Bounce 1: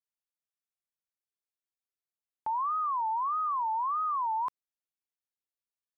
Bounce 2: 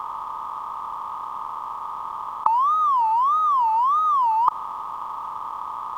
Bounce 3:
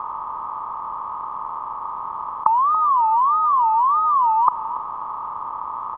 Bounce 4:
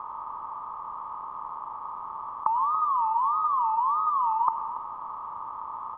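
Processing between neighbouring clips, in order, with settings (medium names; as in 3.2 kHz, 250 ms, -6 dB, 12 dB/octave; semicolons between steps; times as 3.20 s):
spectral levelling over time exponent 0.2; in parallel at -11 dB: hysteresis with a dead band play -32.5 dBFS; on the sum: trim +6.5 dB
low-pass 1.5 kHz 12 dB/octave; delay 283 ms -13 dB; trim +3 dB
reverberation RT60 0.50 s, pre-delay 94 ms, DRR 8 dB; trim -8.5 dB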